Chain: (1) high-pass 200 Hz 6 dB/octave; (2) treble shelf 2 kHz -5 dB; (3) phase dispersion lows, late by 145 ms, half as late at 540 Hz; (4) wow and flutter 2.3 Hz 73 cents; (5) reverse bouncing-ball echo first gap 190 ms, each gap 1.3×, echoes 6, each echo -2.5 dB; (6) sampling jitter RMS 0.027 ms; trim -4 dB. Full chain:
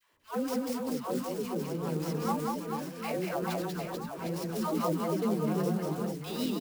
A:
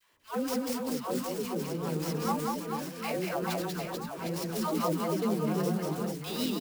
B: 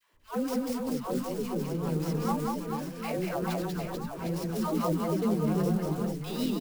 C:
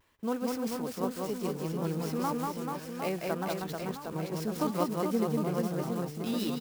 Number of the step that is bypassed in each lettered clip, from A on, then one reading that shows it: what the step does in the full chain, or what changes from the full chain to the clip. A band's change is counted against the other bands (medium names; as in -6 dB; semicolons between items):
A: 2, 4 kHz band +3.5 dB; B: 1, 125 Hz band +3.5 dB; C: 3, crest factor change +3.5 dB